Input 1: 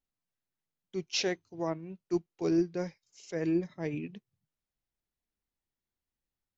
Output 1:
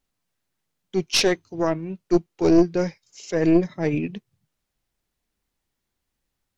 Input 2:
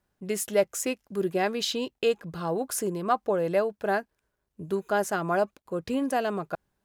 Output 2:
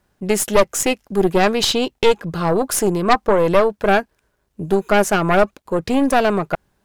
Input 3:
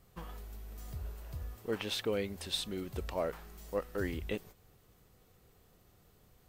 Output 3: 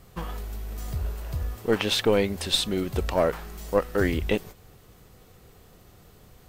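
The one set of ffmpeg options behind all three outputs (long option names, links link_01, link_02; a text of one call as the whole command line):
ffmpeg -i in.wav -af "highshelf=frequency=12000:gain=-4,aeval=exprs='0.282*(cos(1*acos(clip(val(0)/0.282,-1,1)))-cos(1*PI/2))+0.0891*(cos(4*acos(clip(val(0)/0.282,-1,1)))-cos(4*PI/2))+0.0501*(cos(5*acos(clip(val(0)/0.282,-1,1)))-cos(5*PI/2))':channel_layout=same,volume=6.5dB" out.wav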